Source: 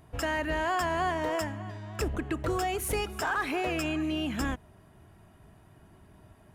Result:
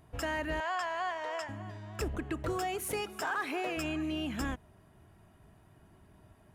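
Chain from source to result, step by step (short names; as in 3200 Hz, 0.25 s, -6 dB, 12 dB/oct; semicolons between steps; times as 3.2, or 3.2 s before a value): 0.6–1.49 three-band isolator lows -24 dB, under 520 Hz, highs -17 dB, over 7400 Hz; 2.52–3.76 HPF 98 Hz -> 260 Hz 12 dB/oct; gain -4 dB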